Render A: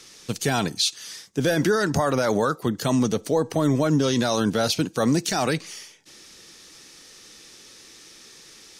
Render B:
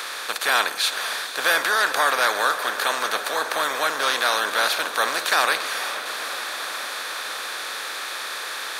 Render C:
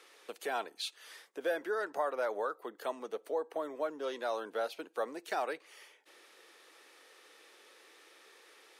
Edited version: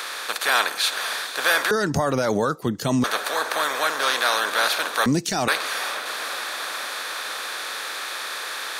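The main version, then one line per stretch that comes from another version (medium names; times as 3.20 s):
B
1.71–3.04 s: from A
5.06–5.48 s: from A
not used: C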